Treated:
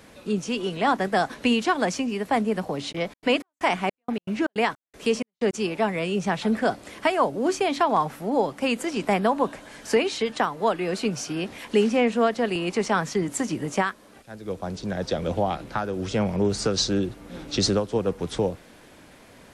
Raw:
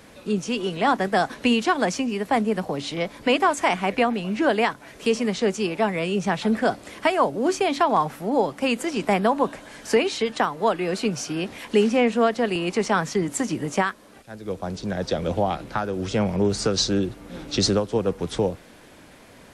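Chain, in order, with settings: 2.91–5.53 s: trance gate ".x.xx.xx..xxx." 158 bpm -60 dB; trim -1.5 dB

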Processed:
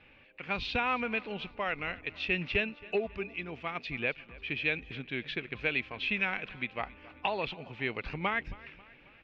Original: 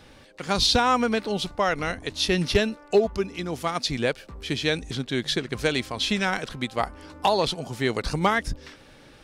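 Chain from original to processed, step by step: four-pole ladder low-pass 2.7 kHz, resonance 75%; feedback delay 271 ms, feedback 50%, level -21 dB

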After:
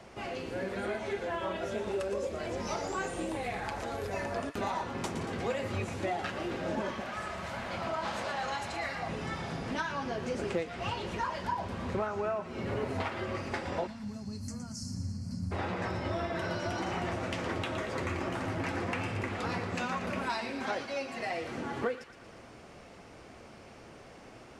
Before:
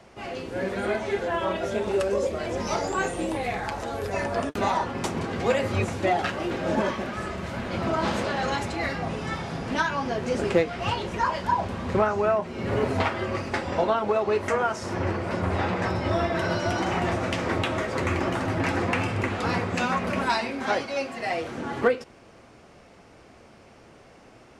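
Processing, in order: 7.00–9.09 s: resonant low shelf 530 Hz -6 dB, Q 1.5; 13.87–15.52 s: time-frequency box 270–4100 Hz -27 dB; compression 2:1, threshold -38 dBFS, peak gain reduction 12.5 dB; feedback echo behind a high-pass 116 ms, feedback 58%, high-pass 1.6 kHz, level -9 dB

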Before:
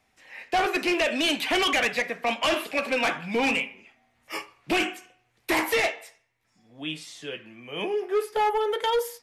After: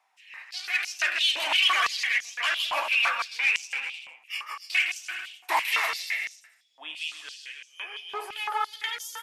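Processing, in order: bouncing-ball echo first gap 160 ms, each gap 0.8×, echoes 5; step-sequenced high-pass 5.9 Hz 910–6000 Hz; trim -5 dB

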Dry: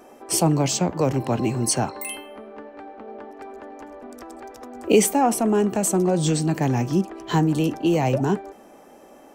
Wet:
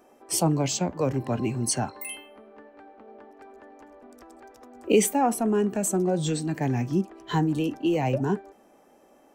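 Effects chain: spectral noise reduction 6 dB; trim -3.5 dB

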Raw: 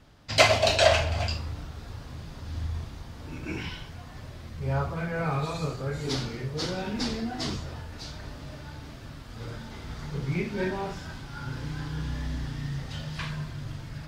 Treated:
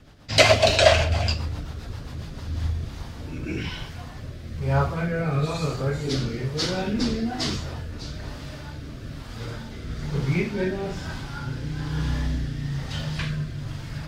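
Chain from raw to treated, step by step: rotary cabinet horn 7.5 Hz, later 1.1 Hz, at 2.07 s; trim +7 dB

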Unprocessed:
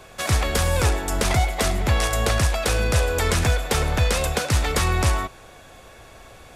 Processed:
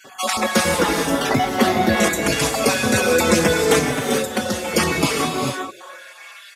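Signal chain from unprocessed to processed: random holes in the spectrogram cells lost 32%; 0.77–1.97 s: peaking EQ 8.2 kHz -11.5 dB 0.87 oct; 3.78–4.72 s: compression 6:1, threshold -26 dBFS, peak gain reduction 10.5 dB; high-pass sweep 230 Hz -> 3.5 kHz, 5.11–6.49 s; gated-style reverb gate 470 ms rising, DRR 2 dB; endless flanger 4.7 ms -0.74 Hz; trim +8 dB

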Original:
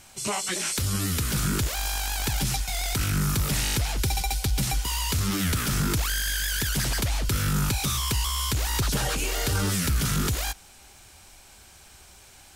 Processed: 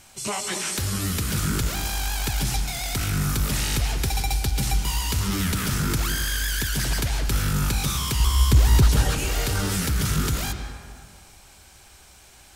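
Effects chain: 8.20–8.87 s: bass shelf 450 Hz +11 dB; on a send: reverberation RT60 1.9 s, pre-delay 107 ms, DRR 6.5 dB

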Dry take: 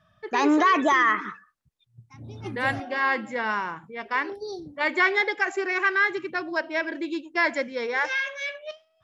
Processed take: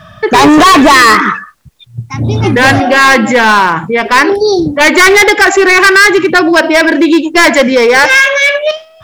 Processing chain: overload inside the chain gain 25.5 dB; loudness maximiser +30 dB; trim -1 dB

